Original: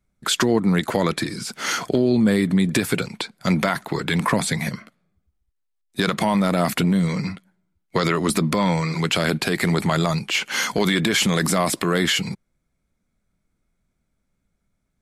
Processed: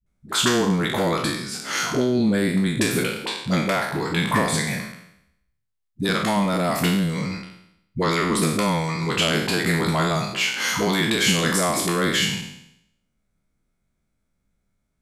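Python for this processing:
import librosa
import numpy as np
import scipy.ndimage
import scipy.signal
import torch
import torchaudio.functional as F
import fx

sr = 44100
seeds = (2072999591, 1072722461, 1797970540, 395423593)

y = fx.spec_trails(x, sr, decay_s=0.76)
y = fx.dispersion(y, sr, late='highs', ms=64.0, hz=320.0)
y = F.gain(torch.from_numpy(y), -3.0).numpy()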